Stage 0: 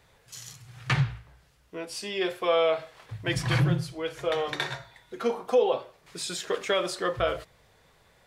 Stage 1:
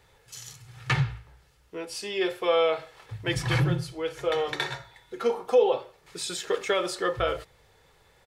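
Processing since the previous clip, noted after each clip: comb 2.3 ms, depth 35%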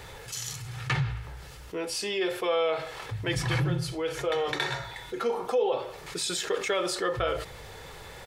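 level flattener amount 50%; trim -6.5 dB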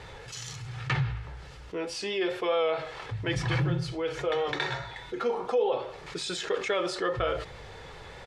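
vibrato 4.8 Hz 30 cents; distance through air 83 m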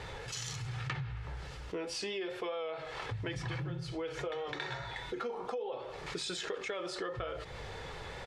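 compression 10:1, threshold -36 dBFS, peak gain reduction 15 dB; trim +1 dB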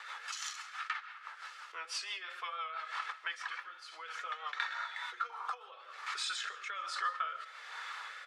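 ladder high-pass 1.1 kHz, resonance 60%; rotary cabinet horn 6 Hz, later 1.2 Hz, at 4.56 s; reverberation RT60 0.35 s, pre-delay 100 ms, DRR 17 dB; trim +12 dB

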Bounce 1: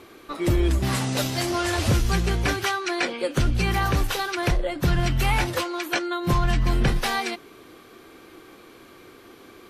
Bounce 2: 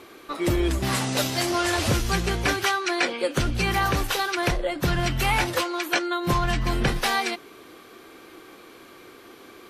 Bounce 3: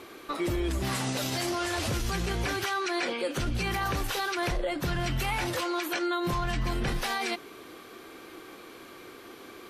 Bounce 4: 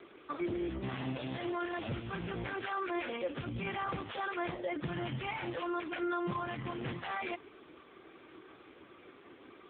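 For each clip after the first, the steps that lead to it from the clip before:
bass shelf 190 Hz -7.5 dB; trim +2 dB
peak limiter -21.5 dBFS, peak gain reduction 10.5 dB
trim -4 dB; AMR-NB 5.15 kbps 8 kHz

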